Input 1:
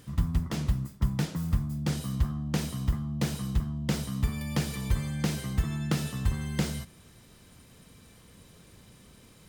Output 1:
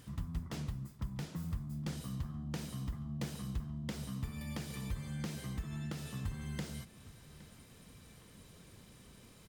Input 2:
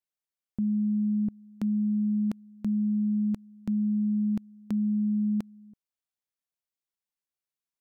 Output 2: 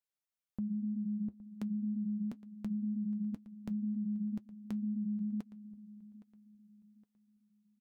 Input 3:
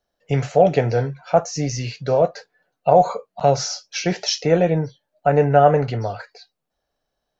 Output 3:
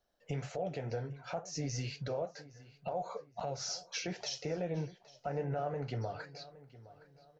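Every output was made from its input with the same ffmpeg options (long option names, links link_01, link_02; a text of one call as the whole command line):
ffmpeg -i in.wav -filter_complex "[0:a]acompressor=threshold=-43dB:ratio=1.5,alimiter=level_in=0.5dB:limit=-24dB:level=0:latency=1:release=204,volume=-0.5dB,flanger=delay=0.8:depth=8.5:regen=-63:speed=2:shape=triangular,asplit=2[link_01][link_02];[link_02]adelay=815,lowpass=frequency=4200:poles=1,volume=-18dB,asplit=2[link_03][link_04];[link_04]adelay=815,lowpass=frequency=4200:poles=1,volume=0.36,asplit=2[link_05][link_06];[link_06]adelay=815,lowpass=frequency=4200:poles=1,volume=0.36[link_07];[link_03][link_05][link_07]amix=inputs=3:normalize=0[link_08];[link_01][link_08]amix=inputs=2:normalize=0,volume=1dB" out.wav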